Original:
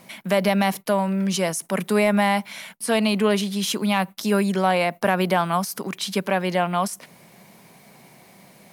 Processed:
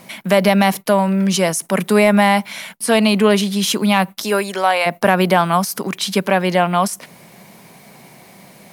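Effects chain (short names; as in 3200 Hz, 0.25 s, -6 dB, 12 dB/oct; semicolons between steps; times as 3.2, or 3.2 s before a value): 4.23–4.85 HPF 320 Hz -> 720 Hz 12 dB/oct; gain +6.5 dB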